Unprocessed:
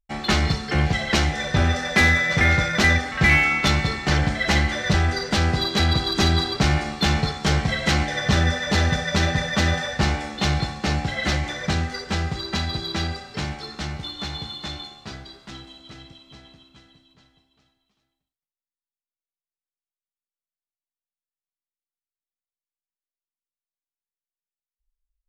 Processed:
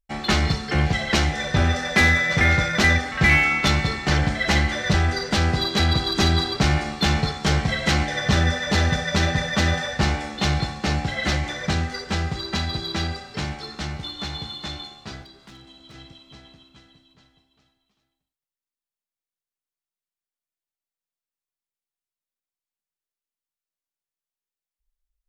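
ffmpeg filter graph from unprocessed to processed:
-filter_complex "[0:a]asettb=1/sr,asplit=3[a][b][c];[a]atrim=end=15.224[d];[b]atrim=start=15.22:end=15.94,asetpts=PTS-STARTPTS,afade=t=in:d=0.004:c=qsin,afade=t=out:st=0.716:d=0.004:c=qsin,acrossover=split=90|310[e][f][g];[e]acompressor=threshold=-58dB:ratio=4[h];[f]acompressor=threshold=-48dB:ratio=4[i];[g]acompressor=threshold=-46dB:ratio=4[j];[h][i][j]amix=inputs=3:normalize=0,aeval=exprs='0.0126*(abs(mod(val(0)/0.0126+3,4)-2)-1)':c=same[k];[c]atrim=start=15.936[l];[d][k]acrossfade=d=0.004:c1=hsin:c2=qsin[m];[m][l]acrossfade=d=0.004:c1=qsin:c2=hsin"

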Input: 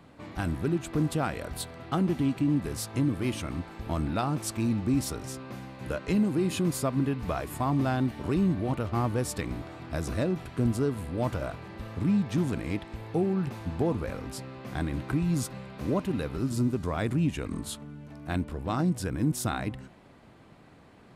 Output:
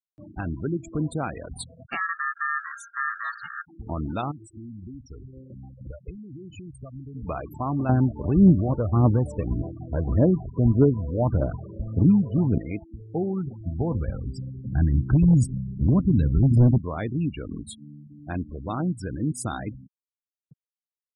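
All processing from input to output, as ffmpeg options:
-filter_complex "[0:a]asettb=1/sr,asplit=3[a][b][c];[a]atrim=end=1.864[d];[b]atrim=start=1.86:end=3.67,asetpts=PTS-STARTPTS,afade=t=in:d=0.004:c=qsin,afade=t=out:st=1.806:d=0.004:c=qsin,aeval=exprs='val(0)+0.00355*(sin(2*PI*60*n/s)+sin(2*PI*2*60*n/s)/2+sin(2*PI*3*60*n/s)/3+sin(2*PI*4*60*n/s)/4+sin(2*PI*5*60*n/s)/5)':c=same,aeval=exprs='val(0)*sin(2*PI*1500*n/s)':c=same[e];[c]atrim=start=3.666[f];[d][e]acrossfade=d=0.004:c1=hsin:c2=qsin[g];[g][f]acrossfade=d=0.004:c1=qsin:c2=hsin,asettb=1/sr,asplit=3[h][i][j];[h]atrim=end=4.314[k];[i]atrim=start=4.31:end=7.15,asetpts=PTS-STARTPTS,afade=t=in:d=0.004:c=qsin,afade=t=out:st=2.836:d=0.004:c=qsin,acompressor=threshold=-36dB:ratio=8:attack=3.2:release=140:knee=1:detection=peak,asubboost=boost=7.5:cutoff=95[l];[j]atrim=start=7.146[m];[k][l]acrossfade=d=0.004:c1=hsin:c2=qsin[n];[n][m]acrossfade=d=0.004:c1=qsin:c2=hsin,asettb=1/sr,asplit=3[o][p][q];[o]atrim=end=7.894[r];[p]atrim=start=7.89:end=12.58,asetpts=PTS-STARTPTS,afade=t=in:d=0.004:c=qsin,afade=t=out:st=4.686:d=0.004:c=qsin,tiltshelf=f=1.1k:g=6.5,bandreject=f=2.1k:w=5.3,aphaser=in_gain=1:out_gain=1:delay=2.2:decay=0.46:speed=1.7:type=triangular[s];[q]atrim=start=12.576[t];[r][s]acrossfade=d=0.004:c1=hsin:c2=qsin[u];[u][t]acrossfade=d=0.004:c1=qsin:c2=hsin,asettb=1/sr,asplit=3[v][w][x];[v]atrim=end=13.414[y];[w]atrim=start=13.41:end=16.78,asetpts=PTS-STARTPTS,afade=t=in:d=0.004:c=qsin,afade=t=out:st=3.366:d=0.004:c=qsin,bandreject=f=258.5:t=h:w=4,bandreject=f=517:t=h:w=4,bandreject=f=775.5:t=h:w=4,asubboost=boost=12:cutoff=180,asoftclip=type=hard:threshold=-12dB[z];[x]atrim=start=16.776[aa];[y][z]acrossfade=d=0.004:c1=hsin:c2=qsin[ab];[ab][aa]acrossfade=d=0.004:c1=qsin:c2=hsin,afftfilt=real='re*gte(hypot(re,im),0.0282)':imag='im*gte(hypot(re,im),0.0282)':win_size=1024:overlap=0.75,highshelf=f=6.4k:g=6.5,acompressor=mode=upward:threshold=-43dB:ratio=2.5"

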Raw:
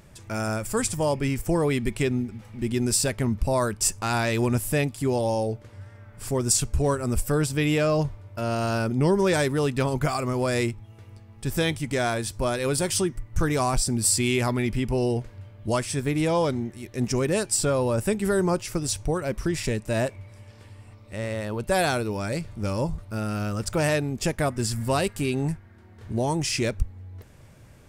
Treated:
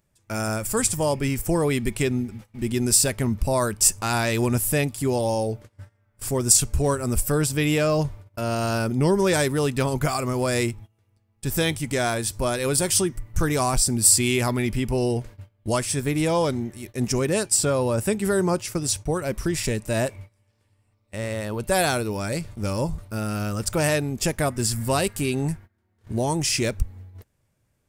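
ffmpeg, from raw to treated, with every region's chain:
-filter_complex "[0:a]asettb=1/sr,asplit=3[a][b][c];[a]atrim=end=17.184[d];[b]atrim=start=17.18:end=19.11,asetpts=PTS-STARTPTS,afade=t=in:d=0.004:c=qsin,afade=t=out:st=1.926:d=0.004:c=qsin,highpass=46,agate=range=-33dB:threshold=-37dB:ratio=3:release=100:detection=peak,highshelf=f=9.7k:g=-5[e];[c]atrim=start=19.106[f];[d][e]acrossfade=d=0.004:c1=hsin:c2=qsin[g];[g][f]acrossfade=d=0.004:c1=qsin:c2=hsin,agate=range=-21dB:threshold=-40dB:ratio=16:detection=peak,highshelf=f=7.5k:g=9,volume=1dB"

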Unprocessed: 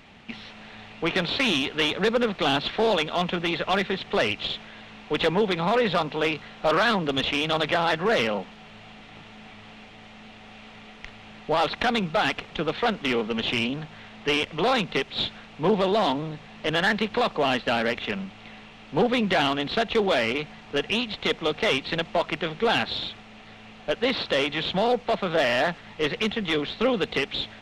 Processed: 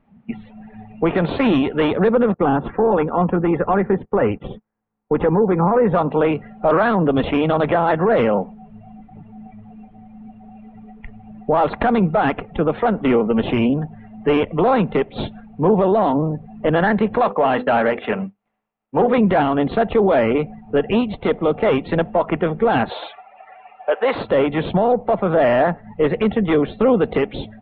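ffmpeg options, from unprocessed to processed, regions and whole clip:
-filter_complex "[0:a]asettb=1/sr,asplit=3[a][b][c];[a]atrim=end=2.344[d];[b]atrim=start=2.34:end=5.94,asetpts=PTS-STARTPTS,afade=t=in:d=0.004:c=qsin,afade=t=out:st=3.596:d=0.004:c=qsin,bandreject=f=640:w=5.7,agate=range=-22dB:threshold=-39dB:ratio=16:release=100:detection=peak,lowpass=1.8k[e];[c]atrim=start=5.936[f];[d][e]acrossfade=d=0.004:c1=hsin:c2=qsin[g];[g][f]acrossfade=d=0.004:c1=qsin:c2=hsin,asettb=1/sr,asplit=3[h][i][j];[h]atrim=end=17.204[k];[i]atrim=start=17.2:end=19.18,asetpts=PTS-STARTPTS,afade=t=in:d=0.004:c=qsin,afade=t=out:st=1.976:d=0.004:c=qsin,agate=range=-33dB:threshold=-33dB:ratio=3:release=100:detection=peak,bandreject=f=50:t=h:w=6,bandreject=f=100:t=h:w=6,bandreject=f=150:t=h:w=6,bandreject=f=200:t=h:w=6,bandreject=f=250:t=h:w=6,bandreject=f=300:t=h:w=6,bandreject=f=350:t=h:w=6,bandreject=f=400:t=h:w=6,bandreject=f=450:t=h:w=6,bandreject=f=500:t=h:w=6,asplit=2[l][m];[m]highpass=f=720:p=1,volume=8dB,asoftclip=type=tanh:threshold=-13dB[n];[l][n]amix=inputs=2:normalize=0,lowpass=f=7.1k:p=1,volume=-6dB[o];[j]atrim=start=19.176[p];[k][o]acrossfade=d=0.004:c1=hsin:c2=qsin[q];[q][p]acrossfade=d=0.004:c1=qsin:c2=hsin,asettb=1/sr,asplit=3[r][s][t];[r]atrim=end=22.894[u];[s]atrim=start=22.89:end=24.15,asetpts=PTS-STARTPTS,afade=t=in:d=0.004:c=qsin,afade=t=out:st=1.256:d=0.004:c=qsin,acrossover=split=490 4300:gain=0.0794 1 0.251[v][w][x];[v][w][x]amix=inputs=3:normalize=0,acontrast=47[y];[t]atrim=start=24.146[z];[u][y]acrossfade=d=0.004:c1=hsin:c2=qsin[aa];[aa][z]acrossfade=d=0.004:c1=qsin:c2=hsin,afftdn=nr=22:nf=-38,lowpass=1.1k,alimiter=level_in=19.5dB:limit=-1dB:release=50:level=0:latency=1,volume=-7.5dB"

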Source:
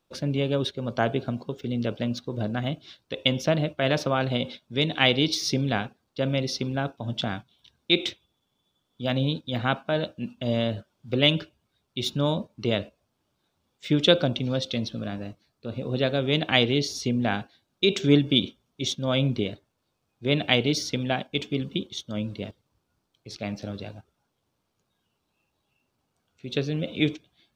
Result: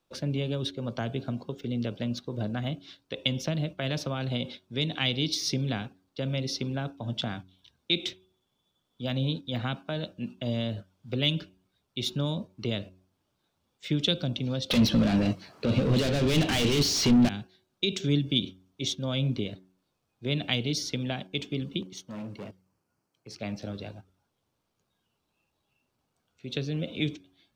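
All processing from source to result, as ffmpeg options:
-filter_complex "[0:a]asettb=1/sr,asplit=3[a][b][c];[a]atrim=end=14.704[d];[b]atrim=start=14.7:end=17.29,asetpts=PTS-STARTPTS,afade=t=in:d=0.004:c=qsin,afade=t=out:st=2.586:d=0.004:c=qsin,bandreject=f=3.6k:w=9.5,asplit=2[e][f];[f]highpass=f=720:p=1,volume=38dB,asoftclip=type=tanh:threshold=-5dB[g];[e][g]amix=inputs=2:normalize=0,lowpass=f=1.3k:p=1,volume=-6dB[h];[c]atrim=start=17.286[i];[d][h]acrossfade=d=0.004:c1=hsin:c2=qsin[j];[j][i]acrossfade=d=0.004:c1=qsin:c2=hsin,asettb=1/sr,asplit=3[k][l][m];[k]atrim=end=21.814[n];[l]atrim=start=21.81:end=23.4,asetpts=PTS-STARTPTS,afade=t=in:d=0.004:c=qsin,afade=t=out:st=1.586:d=0.004:c=qsin,equalizer=f=3.6k:t=o:w=0.32:g=-13.5,volume=32dB,asoftclip=hard,volume=-32dB,highpass=110[o];[m]atrim=start=23.396[p];[n][o]acrossfade=d=0.004:c1=hsin:c2=qsin[q];[q][p]acrossfade=d=0.004:c1=qsin:c2=hsin,bandreject=f=93.1:t=h:w=4,bandreject=f=186.2:t=h:w=4,bandreject=f=279.3:t=h:w=4,bandreject=f=372.4:t=h:w=4,acrossover=split=250|3000[r][s][t];[s]acompressor=threshold=-31dB:ratio=6[u];[r][u][t]amix=inputs=3:normalize=0,volume=-2dB"

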